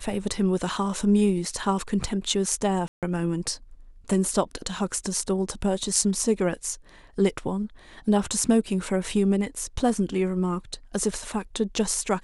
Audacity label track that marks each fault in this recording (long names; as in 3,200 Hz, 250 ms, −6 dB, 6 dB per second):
2.880000	3.030000	drop-out 147 ms